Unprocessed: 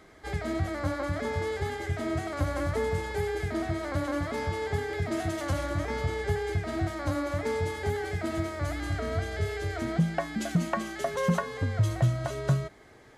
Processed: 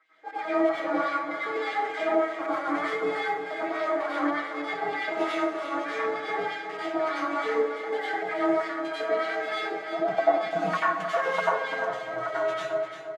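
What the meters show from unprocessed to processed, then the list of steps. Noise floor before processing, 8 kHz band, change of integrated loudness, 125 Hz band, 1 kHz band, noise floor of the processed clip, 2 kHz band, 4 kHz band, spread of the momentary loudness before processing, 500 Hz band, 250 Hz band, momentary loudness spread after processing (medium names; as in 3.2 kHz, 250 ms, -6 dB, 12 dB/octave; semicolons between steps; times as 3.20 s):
-53 dBFS, no reading, +2.5 dB, -23.0 dB, +7.5 dB, -37 dBFS, +6.0 dB, +2.5 dB, 4 LU, +5.0 dB, 0.0 dB, 5 LU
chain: high-pass 200 Hz 24 dB/octave; comb 6.2 ms, depth 96%; reverse; upward compressor, threshold -44 dBFS; reverse; trance gate "...x.xxxx.xxxx" 195 bpm -12 dB; LFO band-pass sine 3.3 Hz 540–2800 Hz; on a send: feedback delay 345 ms, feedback 34%, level -9 dB; on the sum: plate-style reverb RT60 0.57 s, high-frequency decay 0.85×, pre-delay 80 ms, DRR -7.5 dB; trim +2.5 dB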